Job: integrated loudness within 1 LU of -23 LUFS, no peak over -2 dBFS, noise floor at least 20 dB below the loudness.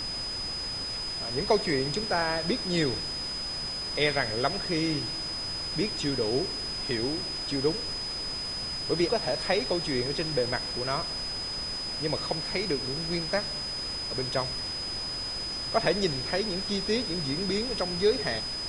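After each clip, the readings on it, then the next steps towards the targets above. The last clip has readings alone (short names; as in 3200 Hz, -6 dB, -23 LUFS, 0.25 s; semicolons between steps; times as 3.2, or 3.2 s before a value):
steady tone 5000 Hz; tone level -32 dBFS; noise floor -34 dBFS; noise floor target -49 dBFS; loudness -28.5 LUFS; peak -10.5 dBFS; loudness target -23.0 LUFS
-> notch 5000 Hz, Q 30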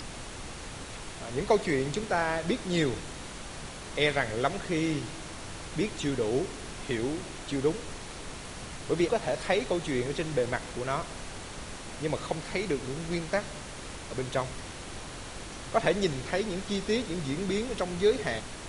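steady tone none; noise floor -42 dBFS; noise floor target -52 dBFS
-> noise print and reduce 10 dB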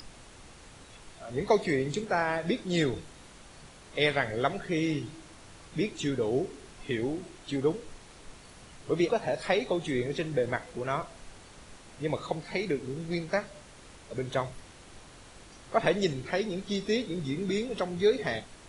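noise floor -52 dBFS; loudness -30.5 LUFS; peak -11.0 dBFS; loudness target -23.0 LUFS
-> gain +7.5 dB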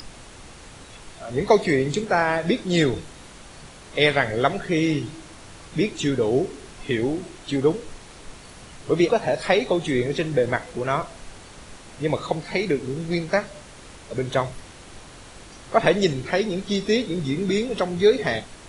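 loudness -23.0 LUFS; peak -3.5 dBFS; noise floor -44 dBFS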